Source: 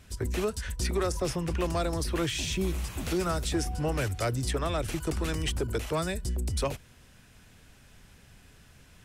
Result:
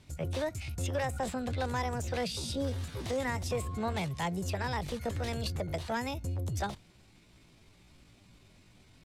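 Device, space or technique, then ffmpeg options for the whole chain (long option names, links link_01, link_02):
chipmunk voice: -af "asetrate=64194,aresample=44100,atempo=0.686977,lowpass=8300,volume=-4dB"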